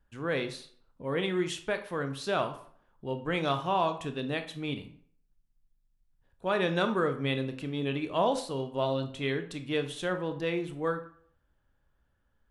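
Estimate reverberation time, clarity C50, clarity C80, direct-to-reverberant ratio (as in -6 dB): 0.55 s, 11.5 dB, 15.5 dB, 7.5 dB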